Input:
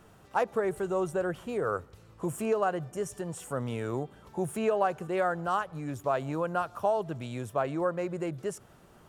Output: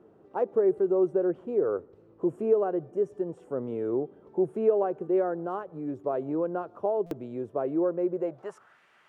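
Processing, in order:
band-pass filter sweep 370 Hz → 2,100 Hz, 0:08.10–0:08.81
buffer that repeats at 0:07.06, samples 256, times 8
level +8 dB

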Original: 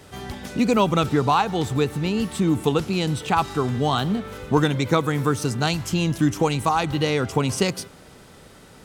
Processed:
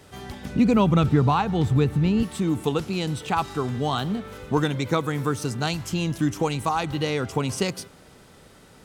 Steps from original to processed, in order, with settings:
0:00.45–0:02.23: bass and treble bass +10 dB, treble −6 dB
level −3.5 dB

